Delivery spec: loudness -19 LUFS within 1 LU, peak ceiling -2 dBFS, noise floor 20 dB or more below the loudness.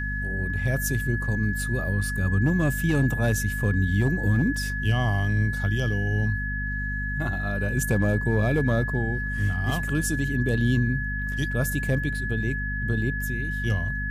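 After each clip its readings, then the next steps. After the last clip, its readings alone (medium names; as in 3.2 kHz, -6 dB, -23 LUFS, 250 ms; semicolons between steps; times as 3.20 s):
hum 50 Hz; highest harmonic 250 Hz; hum level -28 dBFS; steady tone 1.7 kHz; tone level -30 dBFS; loudness -25.5 LUFS; peak level -11.0 dBFS; loudness target -19.0 LUFS
-> de-hum 50 Hz, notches 5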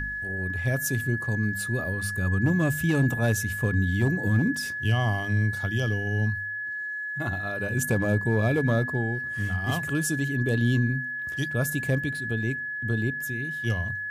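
hum not found; steady tone 1.7 kHz; tone level -30 dBFS
-> band-stop 1.7 kHz, Q 30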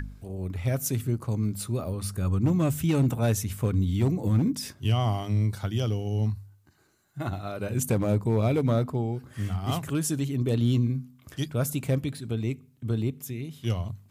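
steady tone not found; loudness -28.0 LUFS; peak level -13.0 dBFS; loudness target -19.0 LUFS
-> trim +9 dB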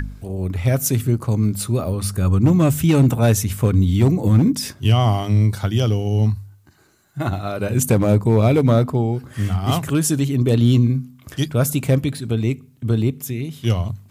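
loudness -19.0 LUFS; peak level -4.0 dBFS; noise floor -51 dBFS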